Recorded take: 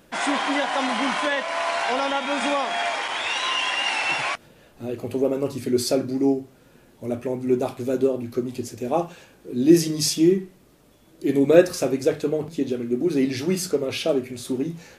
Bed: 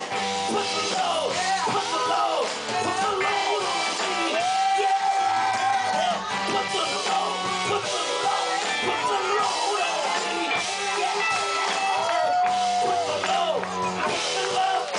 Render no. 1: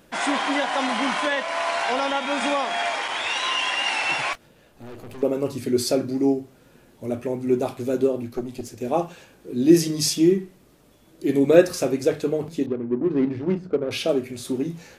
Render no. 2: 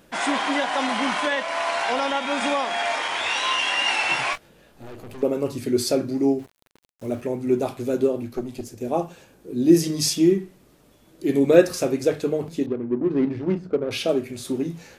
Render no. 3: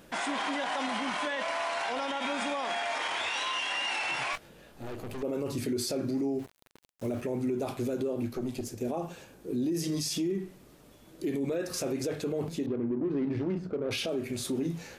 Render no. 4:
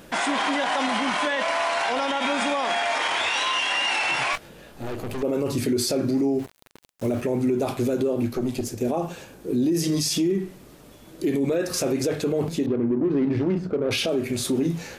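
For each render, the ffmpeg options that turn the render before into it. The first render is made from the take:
-filter_complex "[0:a]asettb=1/sr,asplit=3[s0][s1][s2];[s0]atrim=end=4.334[s3];[s1]atrim=start=4.33:end=5.23,asetpts=PTS-STARTPTS,afade=t=in:d=0.004:c=qsin,afade=t=out:st=0.896:d=0.004:c=qsin,aeval=exprs='(tanh(70.8*val(0)+0.6)-tanh(0.6))/70.8':c=same[s4];[s2]atrim=start=5.226[s5];[s3][s4]acrossfade=d=0.004:c1=hsin:c2=qsin[s6];[s6][s5]acrossfade=d=0.004:c1=qsin:c2=hsin,asettb=1/sr,asplit=3[s7][s8][s9];[s7]atrim=end=8.284[s10];[s8]atrim=start=8.28:end=8.81,asetpts=PTS-STARTPTS,afade=t=in:d=0.004:c=qsin,afade=t=out:st=0.526:d=0.004:c=qsin,aeval=exprs='(tanh(7.08*val(0)+0.6)-tanh(0.6))/7.08':c=same[s11];[s9]atrim=start=8.806[s12];[s10][s11]acrossfade=d=0.004:c1=hsin:c2=qsin[s13];[s13][s12]acrossfade=d=0.004:c1=qsin:c2=hsin,asettb=1/sr,asplit=3[s14][s15][s16];[s14]atrim=end=12.664[s17];[s15]atrim=start=12.66:end=13.91,asetpts=PTS-STARTPTS,afade=t=in:d=0.004:c=qsin,afade=t=out:st=1.246:d=0.004:c=qsin,adynamicsmooth=sensitivity=1:basefreq=580[s18];[s16]atrim=start=13.906[s19];[s17][s18]acrossfade=d=0.004:c1=hsin:c2=qsin[s20];[s20][s19]acrossfade=d=0.004:c1=qsin:c2=hsin"
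-filter_complex "[0:a]asettb=1/sr,asplit=3[s0][s1][s2];[s0]atrim=end=2.874[s3];[s1]atrim=start=2.87:end=4.91,asetpts=PTS-STARTPTS,afade=t=in:d=0.004:c=qsin,afade=t=out:st=2.036:d=0.004:c=qsin,asplit=2[s4][s5];[s5]adelay=23,volume=0.562[s6];[s4][s6]amix=inputs=2:normalize=0,atrim=end_sample=89964[s7];[s2]atrim=start=4.906[s8];[s3][s7]acrossfade=d=0.004:c1=hsin:c2=qsin[s9];[s9][s8]acrossfade=d=0.004:c1=qsin:c2=hsin,asettb=1/sr,asplit=3[s10][s11][s12];[s10]atrim=end=6.394[s13];[s11]atrim=start=6.39:end=7.21,asetpts=PTS-STARTPTS,afade=t=in:d=0.004:c=qsin,afade=t=out:st=0.816:d=0.004:c=qsin,aeval=exprs='val(0)*gte(abs(val(0)),0.00596)':c=same[s14];[s12]atrim=start=7.206[s15];[s13][s14]acrossfade=d=0.004:c1=hsin:c2=qsin[s16];[s16][s15]acrossfade=d=0.004:c1=qsin:c2=hsin,asettb=1/sr,asplit=3[s17][s18][s19];[s17]atrim=end=8.644[s20];[s18]atrim=start=8.64:end=9.84,asetpts=PTS-STARTPTS,afade=t=in:d=0.004:c=qsin,afade=t=out:st=1.196:d=0.004:c=qsin,equalizer=f=2400:w=0.46:g=-4.5[s21];[s19]atrim=start=9.836[s22];[s20][s21]acrossfade=d=0.004:c1=hsin:c2=qsin[s23];[s23][s22]acrossfade=d=0.004:c1=qsin:c2=hsin"
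-af "acompressor=threshold=0.0891:ratio=6,alimiter=limit=0.0631:level=0:latency=1:release=34"
-af "volume=2.51"

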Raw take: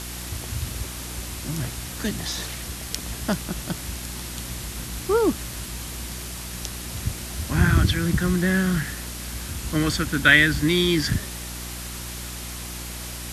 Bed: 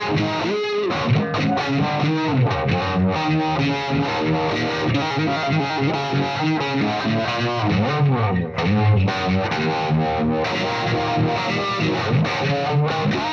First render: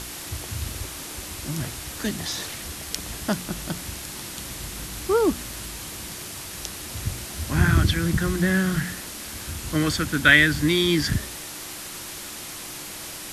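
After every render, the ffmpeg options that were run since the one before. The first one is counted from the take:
-af "bandreject=f=60:t=h:w=4,bandreject=f=120:t=h:w=4,bandreject=f=180:t=h:w=4,bandreject=f=240:t=h:w=4"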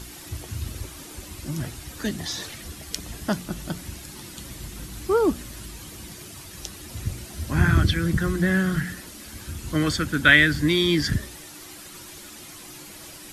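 -af "afftdn=nr=9:nf=-37"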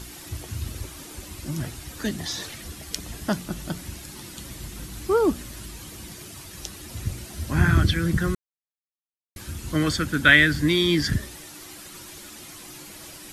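-filter_complex "[0:a]asplit=3[s0][s1][s2];[s0]atrim=end=8.35,asetpts=PTS-STARTPTS,afade=t=out:st=8.346:d=0.004:c=hsin[s3];[s1]atrim=start=8.35:end=9.36,asetpts=PTS-STARTPTS,volume=0[s4];[s2]atrim=start=9.36,asetpts=PTS-STARTPTS,afade=t=in:d=0.004:c=hsin[s5];[s3][s4][s5]concat=n=3:v=0:a=1"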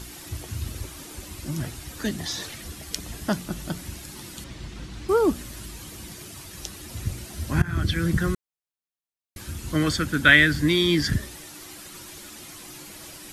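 -filter_complex "[0:a]asettb=1/sr,asplit=3[s0][s1][s2];[s0]atrim=end=4.444[s3];[s1]atrim=start=4.44:end=5.09,asetpts=PTS-STARTPTS,afade=t=in:d=0.004:c=qsin,afade=t=out:st=0.646:d=0.004:c=qsin,lowpass=4900[s4];[s2]atrim=start=5.086[s5];[s3][s4]acrossfade=d=0.004:c1=hsin:c2=qsin[s6];[s6][s5]acrossfade=d=0.004:c1=qsin:c2=hsin,asplit=2[s7][s8];[s7]atrim=end=7.62,asetpts=PTS-STARTPTS,afade=t=out:st=7.616:d=0.004:c=hsin:silence=0.0944061[s9];[s8]atrim=start=7.62,asetpts=PTS-STARTPTS,afade=t=in:d=0.4:silence=0.0944061[s10];[s9][s10]concat=n=2:v=0:a=1"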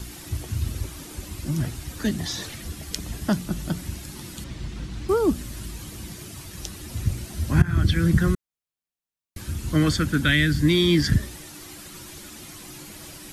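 -filter_complex "[0:a]acrossover=split=270|2900[s0][s1][s2];[s0]acontrast=29[s3];[s1]alimiter=limit=0.15:level=0:latency=1:release=451[s4];[s3][s4][s2]amix=inputs=3:normalize=0"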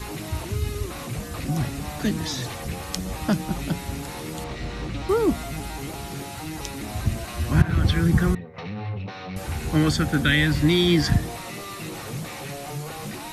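-filter_complex "[1:a]volume=0.188[s0];[0:a][s0]amix=inputs=2:normalize=0"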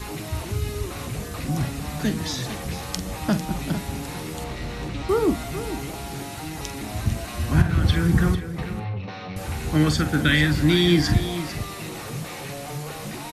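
-filter_complex "[0:a]asplit=2[s0][s1];[s1]adelay=46,volume=0.282[s2];[s0][s2]amix=inputs=2:normalize=0,aecho=1:1:449:0.251"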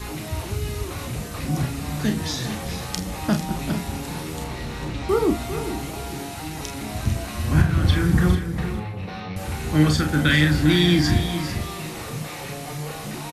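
-filter_complex "[0:a]asplit=2[s0][s1];[s1]adelay=33,volume=0.447[s2];[s0][s2]amix=inputs=2:normalize=0,aecho=1:1:402:0.251"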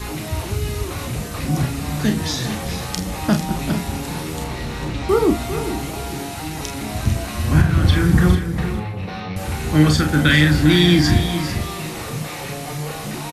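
-af "volume=1.58,alimiter=limit=0.708:level=0:latency=1"

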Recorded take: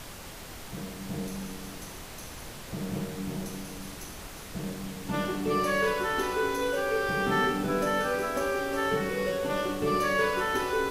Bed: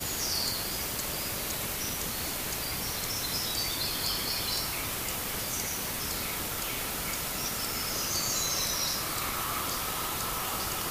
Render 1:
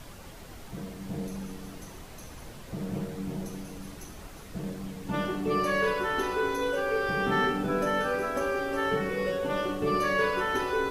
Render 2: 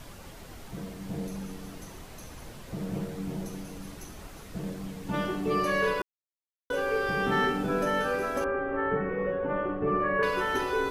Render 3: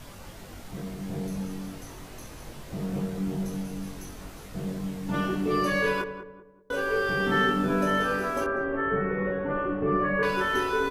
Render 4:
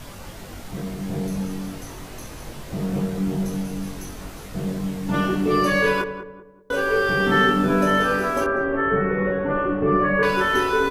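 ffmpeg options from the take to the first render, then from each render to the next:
-af "afftdn=nr=7:nf=-43"
-filter_complex "[0:a]asettb=1/sr,asplit=3[s0][s1][s2];[s0]atrim=end=8.444[s3];[s1]atrim=start=8.44:end=10.23,asetpts=PTS-STARTPTS,afade=t=in:d=0.004:c=qsin,afade=t=out:st=1.786:d=0.004:c=qsin,lowpass=f=1900:w=0.5412,lowpass=f=1900:w=1.3066[s4];[s2]atrim=start=10.226[s5];[s3][s4]acrossfade=d=0.004:c1=hsin:c2=qsin[s6];[s6][s5]acrossfade=d=0.004:c1=qsin:c2=hsin,asplit=3[s7][s8][s9];[s7]atrim=end=6.02,asetpts=PTS-STARTPTS,afade=t=out:st=6.016:d=0.004:c=hsin[s10];[s8]atrim=start=6.02:end=6.7,asetpts=PTS-STARTPTS,volume=0[s11];[s9]atrim=start=6.7,asetpts=PTS-STARTPTS,afade=t=in:d=0.004:c=hsin[s12];[s10][s11][s12]concat=n=3:v=0:a=1"
-filter_complex "[0:a]asplit=2[s0][s1];[s1]adelay=21,volume=0.631[s2];[s0][s2]amix=inputs=2:normalize=0,asplit=2[s3][s4];[s4]adelay=193,lowpass=f=1100:p=1,volume=0.355,asplit=2[s5][s6];[s6]adelay=193,lowpass=f=1100:p=1,volume=0.4,asplit=2[s7][s8];[s8]adelay=193,lowpass=f=1100:p=1,volume=0.4,asplit=2[s9][s10];[s10]adelay=193,lowpass=f=1100:p=1,volume=0.4[s11];[s3][s5][s7][s9][s11]amix=inputs=5:normalize=0"
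-af "volume=2"

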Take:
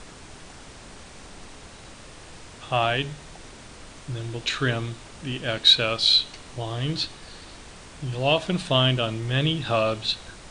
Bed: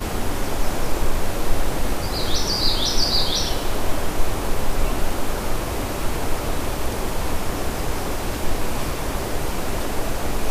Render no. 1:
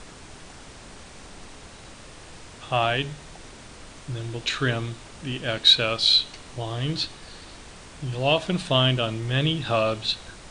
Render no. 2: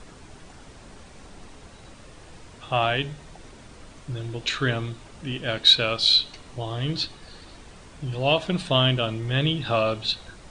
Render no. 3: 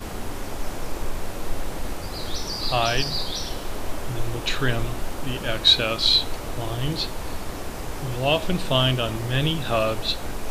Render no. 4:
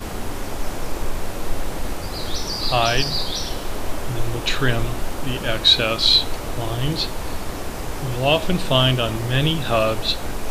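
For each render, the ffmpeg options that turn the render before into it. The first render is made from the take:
-af anull
-af "afftdn=nr=6:nf=-45"
-filter_complex "[1:a]volume=0.422[s0];[0:a][s0]amix=inputs=2:normalize=0"
-af "volume=1.5,alimiter=limit=0.708:level=0:latency=1"

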